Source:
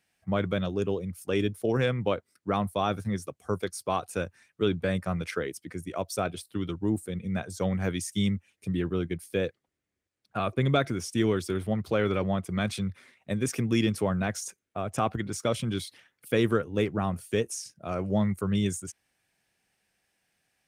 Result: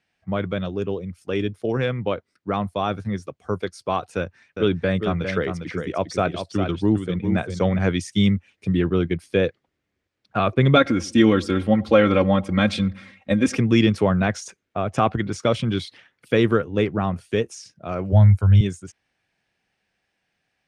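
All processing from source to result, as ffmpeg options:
-filter_complex "[0:a]asettb=1/sr,asplit=3[a][b][c];[a]atrim=end=4.164[d];[b]atrim=start=4.16:end=7.79,asetpts=PTS-STARTPTS,afade=t=in:d=0.004:c=qsin,afade=t=out:st=3.626:d=0.004:c=qsin,lowpass=8.6k,aecho=1:1:404:0.422,atrim=end_sample=160083[e];[c]atrim=start=7.786[f];[d][e]acrossfade=d=0.004:c1=hsin:c2=qsin[g];[g][f]acrossfade=d=0.004:c1=qsin:c2=hsin,asettb=1/sr,asplit=3[h][i][j];[h]atrim=end=10.764[k];[i]atrim=start=10.76:end=13.58,asetpts=PTS-STARTPTS,afade=t=in:d=0.004:c=qsin,afade=t=out:st=2.816:d=0.004:c=qsin,aecho=1:1:3.7:0.76,atrim=end_sample=124362,asplit=2[l][m];[m]adelay=99,lowpass=f=1.1k:p=1,volume=-21dB,asplit=2[n][o];[o]adelay=99,lowpass=f=1.1k:p=1,volume=0.41,asplit=2[p][q];[q]adelay=99,lowpass=f=1.1k:p=1,volume=0.41[r];[l][n][p][r]amix=inputs=4:normalize=0,atrim=end_sample=124362[s];[j]atrim=start=13.576[t];[k][s]acrossfade=d=0.004:c1=hsin:c2=qsin[u];[u][t]acrossfade=d=0.004:c1=qsin:c2=hsin,asettb=1/sr,asplit=3[v][w][x];[v]atrim=end=18.124[y];[w]atrim=start=18.12:end=18.61,asetpts=PTS-STARTPTS,afade=t=in:d=0.004:c=qsin,afade=t=out:st=0.486:d=0.004:c=qsin,lowshelf=f=130:t=q:w=3:g=7,aecho=1:1:1.3:0.56,atrim=end_sample=21609[z];[x]atrim=start=18.606[aa];[y][z]acrossfade=d=0.004:c1=hsin:c2=qsin[ab];[ab][aa]acrossfade=d=0.004:c1=qsin:c2=hsin,lowpass=4.6k,dynaudnorm=f=590:g=17:m=7dB,volume=2.5dB"

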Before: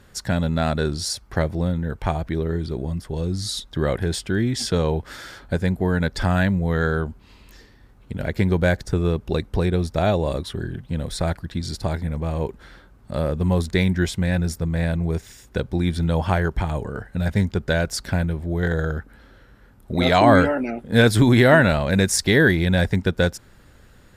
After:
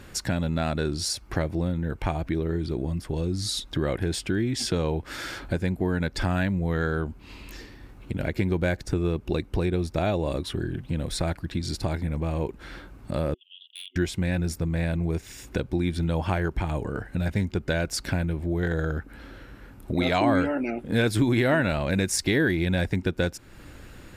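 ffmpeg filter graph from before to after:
-filter_complex "[0:a]asettb=1/sr,asplit=3[a][b][c];[a]atrim=end=13.344[d];[b]atrim=start=13.34:end=13.96,asetpts=PTS-STARTPTS,afade=t=in:d=0.004:c=qsin,afade=t=out:st=0.616:d=0.004:c=qsin,asuperpass=centerf=3100:order=8:qfactor=5,aeval=exprs='0.0141*(abs(mod(val(0)/0.0141+3,4)-2)-1)':c=same[e];[c]atrim=start=13.956[f];[d][e]acrossfade=d=0.004:c1=hsin:c2=qsin[g];[g][f]acrossfade=d=0.004:c1=qsin:c2=hsin,superequalizer=6b=1.78:12b=1.58,acompressor=threshold=-36dB:ratio=2,volume=5dB"

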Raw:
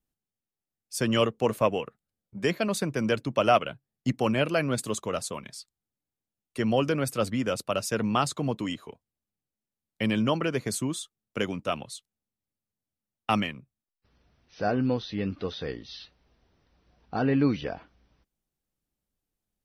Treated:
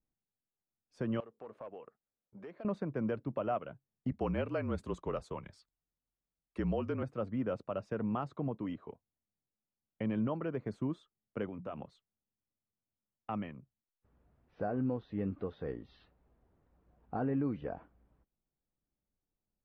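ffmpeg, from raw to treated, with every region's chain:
-filter_complex "[0:a]asettb=1/sr,asplit=3[a][b][c];[a]atrim=end=1.204[d];[b]atrim=start=1.2:end=2.65,asetpts=PTS-STARTPTS,afade=t=in:d=0.004:c=qsin,afade=t=out:st=1.446:d=0.004:c=qsin,volume=18.5dB,asoftclip=hard,volume=-18.5dB,bass=f=250:g=-12,treble=f=4k:g=3,acompressor=threshold=-44dB:ratio=3:attack=3.2:release=140:knee=1:detection=peak[e];[c]atrim=start=2.646[f];[d][e]acrossfade=d=0.004:c1=hsin:c2=qsin[g];[g][f]acrossfade=d=0.004:c1=qsin:c2=hsin,asettb=1/sr,asplit=3[h][i][j];[h]atrim=end=4.114[k];[i]atrim=start=4.11:end=7.03,asetpts=PTS-STARTPTS,afade=t=in:d=0.004:c=qsin,afade=t=out:st=2.916:d=0.004:c=qsin,aemphasis=mode=production:type=75kf,afreqshift=-41[l];[j]atrim=start=7.026[m];[k][l]acrossfade=d=0.004:c1=hsin:c2=qsin[n];[n][m]acrossfade=d=0.004:c1=qsin:c2=hsin,asettb=1/sr,asplit=3[o][p][q];[o]atrim=end=11.484[r];[p]atrim=start=11.48:end=11.9,asetpts=PTS-STARTPTS,afade=t=in:d=0.004:c=qsin,afade=t=out:st=0.416:d=0.004:c=qsin,bandreject=f=60:t=h:w=6,bandreject=f=120:t=h:w=6,bandreject=f=180:t=h:w=6,acompressor=threshold=-32dB:ratio=4:attack=3.2:release=140:knee=1:detection=peak[s];[q]atrim=start=11.896[t];[r][s]acrossfade=d=0.004:c1=hsin:c2=qsin[u];[u][t]acrossfade=d=0.004:c1=qsin:c2=hsin,lowpass=1.2k,alimiter=limit=-21.5dB:level=0:latency=1:release=373,volume=-3.5dB"

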